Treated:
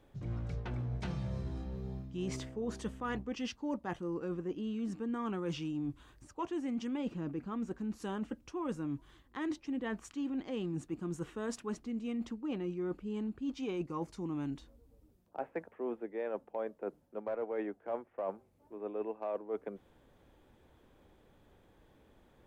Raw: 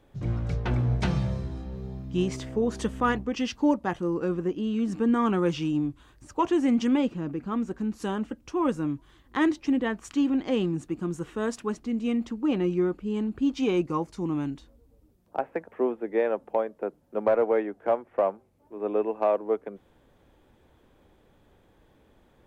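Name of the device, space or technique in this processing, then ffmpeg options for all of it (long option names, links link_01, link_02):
compression on the reversed sound: -af "areverse,acompressor=threshold=-31dB:ratio=6,areverse,volume=-3.5dB"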